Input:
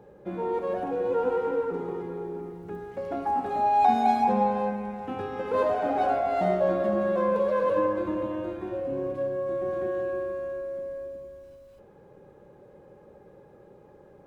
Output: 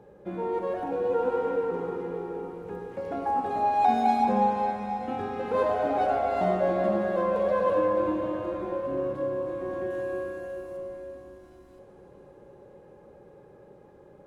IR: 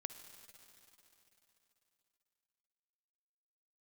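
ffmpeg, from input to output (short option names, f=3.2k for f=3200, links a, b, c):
-filter_complex "[0:a]asettb=1/sr,asplit=3[a][b][c];[a]atrim=end=9.904[d];[b]atrim=start=9.9:end=10.77,asetpts=PTS-STARTPTS,afade=t=in:d=0.004:c=qsin,afade=t=out:st=0.866:d=0.004:c=qsin,aemphasis=mode=production:type=cd[e];[c]atrim=start=10.766[f];[d][e]acrossfade=d=0.004:c1=hsin:c2=qsin[g];[g][f]acrossfade=d=0.004:c1=qsin:c2=hsin[h];[1:a]atrim=start_sample=2205,asetrate=23814,aresample=44100[i];[h][i]afir=irnorm=-1:irlink=0"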